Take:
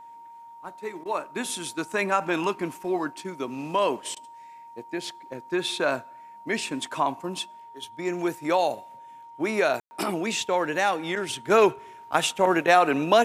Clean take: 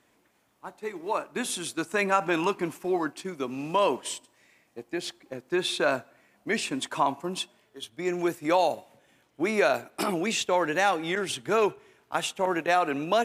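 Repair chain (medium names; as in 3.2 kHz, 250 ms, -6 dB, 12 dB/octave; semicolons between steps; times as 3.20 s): band-stop 930 Hz, Q 30; room tone fill 9.80–9.91 s; interpolate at 1.04/4.15 s, 13 ms; trim 0 dB, from 11.50 s -5.5 dB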